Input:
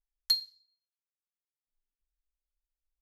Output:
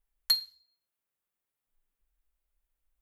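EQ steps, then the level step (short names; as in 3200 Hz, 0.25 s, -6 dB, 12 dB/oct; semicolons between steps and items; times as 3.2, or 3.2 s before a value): bell 5300 Hz -10.5 dB 1.2 oct; +9.0 dB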